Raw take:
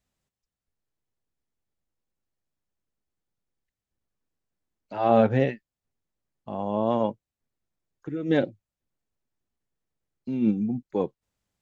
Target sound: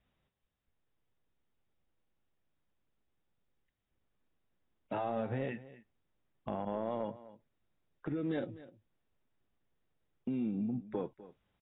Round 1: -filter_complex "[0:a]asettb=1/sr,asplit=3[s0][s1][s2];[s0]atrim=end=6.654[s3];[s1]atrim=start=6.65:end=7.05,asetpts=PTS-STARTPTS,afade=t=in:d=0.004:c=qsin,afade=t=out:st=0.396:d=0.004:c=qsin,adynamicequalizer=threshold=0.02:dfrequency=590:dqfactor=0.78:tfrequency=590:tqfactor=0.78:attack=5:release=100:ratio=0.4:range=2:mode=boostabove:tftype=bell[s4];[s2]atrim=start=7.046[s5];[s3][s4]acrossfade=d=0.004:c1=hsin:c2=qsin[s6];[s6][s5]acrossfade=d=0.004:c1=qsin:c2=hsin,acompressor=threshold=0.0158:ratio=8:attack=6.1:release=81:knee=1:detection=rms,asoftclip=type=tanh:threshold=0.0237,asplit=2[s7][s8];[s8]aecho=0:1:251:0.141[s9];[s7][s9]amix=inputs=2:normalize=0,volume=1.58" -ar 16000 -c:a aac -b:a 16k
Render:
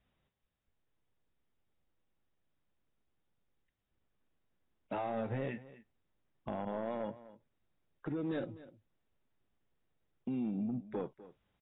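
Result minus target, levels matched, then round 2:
saturation: distortion +9 dB
-filter_complex "[0:a]asettb=1/sr,asplit=3[s0][s1][s2];[s0]atrim=end=6.654[s3];[s1]atrim=start=6.65:end=7.05,asetpts=PTS-STARTPTS,afade=t=in:d=0.004:c=qsin,afade=t=out:st=0.396:d=0.004:c=qsin,adynamicequalizer=threshold=0.02:dfrequency=590:dqfactor=0.78:tfrequency=590:tqfactor=0.78:attack=5:release=100:ratio=0.4:range=2:mode=boostabove:tftype=bell[s4];[s2]atrim=start=7.046[s5];[s3][s4]acrossfade=d=0.004:c1=hsin:c2=qsin[s6];[s6][s5]acrossfade=d=0.004:c1=qsin:c2=hsin,acompressor=threshold=0.0158:ratio=8:attack=6.1:release=81:knee=1:detection=rms,asoftclip=type=tanh:threshold=0.0473,asplit=2[s7][s8];[s8]aecho=0:1:251:0.141[s9];[s7][s9]amix=inputs=2:normalize=0,volume=1.58" -ar 16000 -c:a aac -b:a 16k

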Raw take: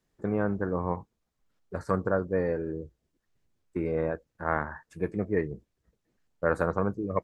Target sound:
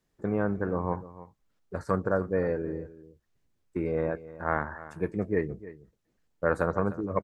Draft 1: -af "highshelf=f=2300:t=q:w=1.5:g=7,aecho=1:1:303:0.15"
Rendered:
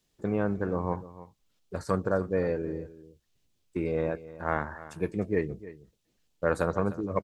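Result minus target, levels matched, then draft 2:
4 kHz band +9.0 dB
-af "aecho=1:1:303:0.15"

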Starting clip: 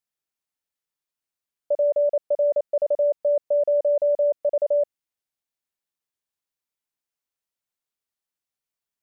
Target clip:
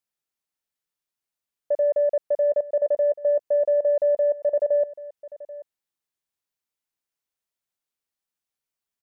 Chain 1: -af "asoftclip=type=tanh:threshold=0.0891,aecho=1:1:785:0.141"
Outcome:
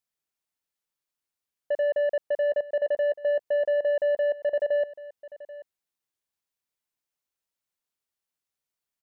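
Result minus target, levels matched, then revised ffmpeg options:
saturation: distortion +19 dB
-af "asoftclip=type=tanh:threshold=0.335,aecho=1:1:785:0.141"

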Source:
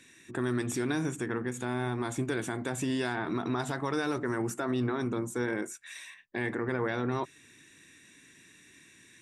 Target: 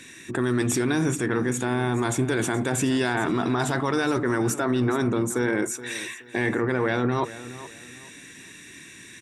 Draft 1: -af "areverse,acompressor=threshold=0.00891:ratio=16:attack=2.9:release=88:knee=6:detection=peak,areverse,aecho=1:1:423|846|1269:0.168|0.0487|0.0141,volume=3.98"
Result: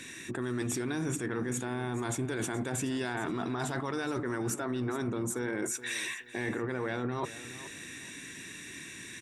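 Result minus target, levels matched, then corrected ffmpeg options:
compression: peak gain reduction +10.5 dB
-af "areverse,acompressor=threshold=0.0316:ratio=16:attack=2.9:release=88:knee=6:detection=peak,areverse,aecho=1:1:423|846|1269:0.168|0.0487|0.0141,volume=3.98"

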